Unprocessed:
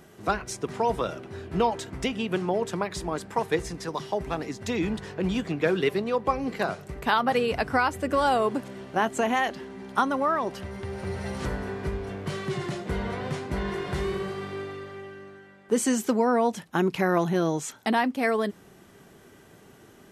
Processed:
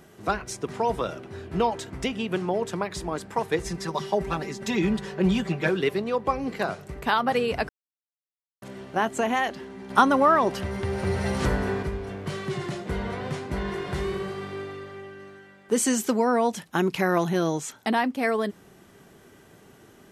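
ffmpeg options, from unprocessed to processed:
-filter_complex "[0:a]asettb=1/sr,asplit=3[s0][s1][s2];[s0]atrim=end=3.654[s3];[s1]atrim=start=3.65:end=5.69,asetpts=PTS-STARTPTS,afade=t=in:d=0.004:c=qsin,afade=t=out:st=2.036:d=0.004:c=qsin,aecho=1:1:5.2:0.99,atrim=end_sample=89964[s4];[s2]atrim=start=5.686[s5];[s3][s4]acrossfade=d=0.004:c1=hsin:c2=qsin[s6];[s6][s5]acrossfade=d=0.004:c1=qsin:c2=hsin,asettb=1/sr,asplit=3[s7][s8][s9];[s7]atrim=end=9.904[s10];[s8]atrim=start=9.9:end=11.83,asetpts=PTS-STARTPTS,afade=t=in:d=0.004:c=qsin,afade=t=out:st=1.926:d=0.004:c=qsin,acontrast=59[s11];[s9]atrim=start=11.826[s12];[s10][s11]acrossfade=d=0.004:c1=hsin:c2=qsin[s13];[s13][s12]acrossfade=d=0.004:c1=qsin:c2=hsin,asettb=1/sr,asplit=3[s14][s15][s16];[s14]atrim=end=15.194[s17];[s15]atrim=start=15.19:end=17.58,asetpts=PTS-STARTPTS,afade=t=in:d=0.004:c=qsin,afade=t=out:st=2.386:d=0.004:c=qsin,highshelf=f=2200:g=4.5[s18];[s16]atrim=start=17.576[s19];[s17][s18]acrossfade=d=0.004:c1=hsin:c2=qsin[s20];[s20][s19]acrossfade=d=0.004:c1=qsin:c2=hsin,asplit=3[s21][s22][s23];[s21]atrim=end=7.69,asetpts=PTS-STARTPTS,afade=t=out:st=7.686:d=0.004:c=hsin[s24];[s22]atrim=start=7.69:end=8.62,asetpts=PTS-STARTPTS,volume=0[s25];[s23]atrim=start=8.62,asetpts=PTS-STARTPTS,afade=t=in:d=0.004:c=hsin[s26];[s24][s25][s26]concat=n=3:v=0:a=1"

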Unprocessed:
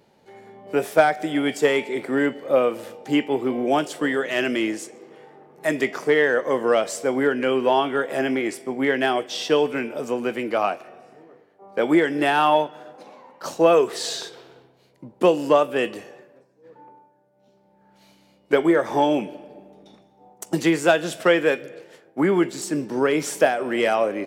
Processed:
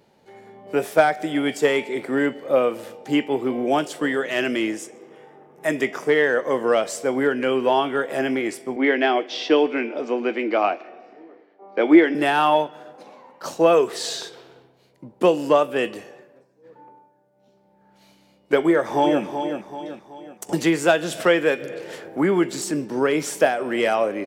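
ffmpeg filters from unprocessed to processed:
-filter_complex "[0:a]asettb=1/sr,asplit=3[s0][s1][s2];[s0]atrim=end=4.734[s3];[s1]atrim=start=4.73:end=6.08,asetpts=PTS-STARTPTS,afade=t=in:d=0.004:c=qsin,afade=t=out:st=1.346:d=0.004:c=qsin,bandreject=f=4300:w=5.1[s4];[s2]atrim=start=6.076[s5];[s3][s4]acrossfade=d=0.004:c1=hsin:c2=qsin[s6];[s6][s5]acrossfade=d=0.004:c1=qsin:c2=hsin,asettb=1/sr,asplit=3[s7][s8][s9];[s7]atrim=end=8.764[s10];[s8]atrim=start=8.76:end=12.15,asetpts=PTS-STARTPTS,afade=t=in:d=0.004:c=qsin,afade=t=out:st=3.386:d=0.004:c=qsin,highpass=f=210:w=0.5412,highpass=f=210:w=1.3066,equalizer=f=320:t=q:w=4:g=7,equalizer=f=710:t=q:w=4:g=3,equalizer=f=2200:t=q:w=4:g=5,lowpass=f=5200:w=0.5412,lowpass=f=5200:w=1.3066[s11];[s9]atrim=start=12.146[s12];[s10][s11]acrossfade=d=0.004:c1=hsin:c2=qsin[s13];[s13][s12]acrossfade=d=0.004:c1=qsin:c2=hsin,asplit=2[s14][s15];[s15]afade=t=in:st=18.65:d=0.01,afade=t=out:st=19.23:d=0.01,aecho=0:1:380|760|1140|1520|1900:0.398107|0.179148|0.0806167|0.0362775|0.0163249[s16];[s14][s16]amix=inputs=2:normalize=0,asettb=1/sr,asplit=3[s17][s18][s19];[s17]atrim=end=20.494[s20];[s18]atrim=start=20.49:end=22.72,asetpts=PTS-STARTPTS,afade=t=in:d=0.004:c=qsin,afade=t=out:st=2.226:d=0.004:c=qsin,acompressor=mode=upward:threshold=0.0794:ratio=2.5:attack=3.2:release=140:knee=2.83:detection=peak[s21];[s19]atrim=start=22.716[s22];[s20][s21]acrossfade=d=0.004:c1=hsin:c2=qsin[s23];[s23][s22]acrossfade=d=0.004:c1=qsin:c2=hsin"

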